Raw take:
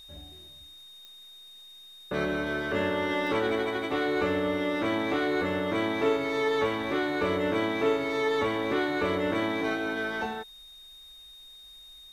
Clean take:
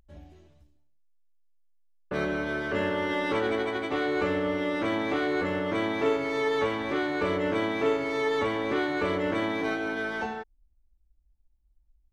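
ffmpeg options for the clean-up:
ffmpeg -i in.wav -af "adeclick=threshold=4,bandreject=frequency=3700:width=30,agate=range=-21dB:threshold=-42dB" out.wav

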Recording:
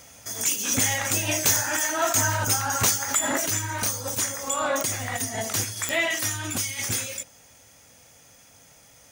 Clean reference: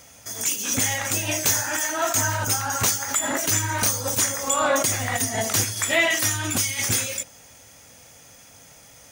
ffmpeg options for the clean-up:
ffmpeg -i in.wav -af "adeclick=threshold=4,asetnsamples=nb_out_samples=441:pad=0,asendcmd='3.47 volume volume 4.5dB',volume=0dB" out.wav

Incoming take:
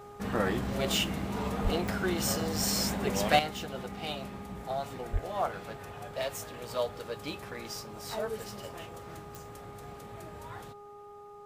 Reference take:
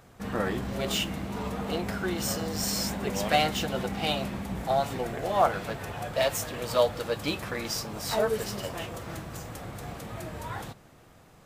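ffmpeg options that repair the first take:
ffmpeg -i in.wav -filter_complex "[0:a]adeclick=threshold=4,bandreject=frequency=410.5:width_type=h:width=4,bandreject=frequency=821:width_type=h:width=4,bandreject=frequency=1231.5:width_type=h:width=4,asplit=3[link_01][link_02][link_03];[link_01]afade=type=out:start_time=1.63:duration=0.02[link_04];[link_02]highpass=frequency=140:width=0.5412,highpass=frequency=140:width=1.3066,afade=type=in:start_time=1.63:duration=0.02,afade=type=out:start_time=1.75:duration=0.02[link_05];[link_03]afade=type=in:start_time=1.75:duration=0.02[link_06];[link_04][link_05][link_06]amix=inputs=3:normalize=0,asplit=3[link_07][link_08][link_09];[link_07]afade=type=out:start_time=5.12:duration=0.02[link_10];[link_08]highpass=frequency=140:width=0.5412,highpass=frequency=140:width=1.3066,afade=type=in:start_time=5.12:duration=0.02,afade=type=out:start_time=5.24:duration=0.02[link_11];[link_09]afade=type=in:start_time=5.24:duration=0.02[link_12];[link_10][link_11][link_12]amix=inputs=3:normalize=0,asetnsamples=nb_out_samples=441:pad=0,asendcmd='3.39 volume volume 8.5dB',volume=0dB" out.wav

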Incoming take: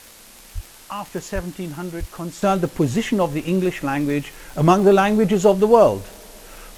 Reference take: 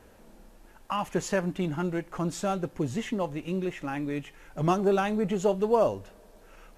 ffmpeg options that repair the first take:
ffmpeg -i in.wav -filter_complex "[0:a]adeclick=threshold=4,asplit=3[link_01][link_02][link_03];[link_01]afade=type=out:start_time=0.54:duration=0.02[link_04];[link_02]highpass=frequency=140:width=0.5412,highpass=frequency=140:width=1.3066,afade=type=in:start_time=0.54:duration=0.02,afade=type=out:start_time=0.66:duration=0.02[link_05];[link_03]afade=type=in:start_time=0.66:duration=0.02[link_06];[link_04][link_05][link_06]amix=inputs=3:normalize=0,asplit=3[link_07][link_08][link_09];[link_07]afade=type=out:start_time=1.34:duration=0.02[link_10];[link_08]highpass=frequency=140:width=0.5412,highpass=frequency=140:width=1.3066,afade=type=in:start_time=1.34:duration=0.02,afade=type=out:start_time=1.46:duration=0.02[link_11];[link_09]afade=type=in:start_time=1.46:duration=0.02[link_12];[link_10][link_11][link_12]amix=inputs=3:normalize=0,asplit=3[link_13][link_14][link_15];[link_13]afade=type=out:start_time=1.99:duration=0.02[link_16];[link_14]highpass=frequency=140:width=0.5412,highpass=frequency=140:width=1.3066,afade=type=in:start_time=1.99:duration=0.02,afade=type=out:start_time=2.11:duration=0.02[link_17];[link_15]afade=type=in:start_time=2.11:duration=0.02[link_18];[link_16][link_17][link_18]amix=inputs=3:normalize=0,afwtdn=0.0063,asetnsamples=nb_out_samples=441:pad=0,asendcmd='2.42 volume volume -10.5dB',volume=0dB" out.wav

